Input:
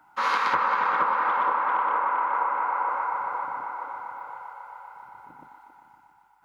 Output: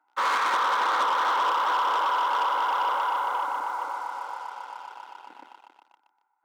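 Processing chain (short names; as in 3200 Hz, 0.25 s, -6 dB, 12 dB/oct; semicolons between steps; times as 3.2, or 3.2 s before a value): Wiener smoothing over 9 samples; sample leveller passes 3; HPF 290 Hz 24 dB/oct; gain -7 dB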